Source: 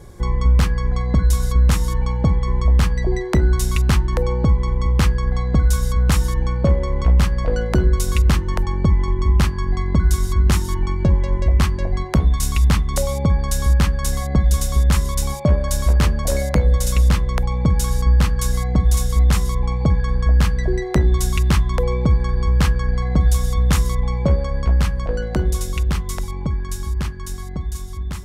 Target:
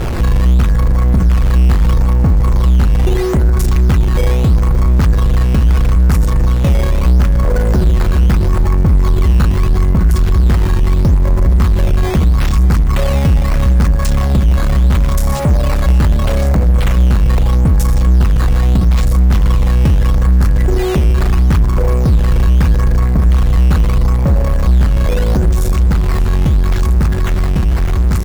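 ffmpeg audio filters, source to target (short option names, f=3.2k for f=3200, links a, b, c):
-filter_complex "[0:a]aeval=exprs='val(0)+0.5*0.0708*sgn(val(0))':c=same,equalizer=f=3.2k:t=o:w=0.79:g=-12,asplit=2[a][b];[b]alimiter=limit=-18dB:level=0:latency=1,volume=3dB[c];[a][c]amix=inputs=2:normalize=0,acrusher=samples=9:mix=1:aa=0.000001:lfo=1:lforange=14.4:lforate=0.77,asoftclip=type=tanh:threshold=-11dB,bass=f=250:g=5,treble=f=4k:g=-3,aecho=1:1:586:0.15"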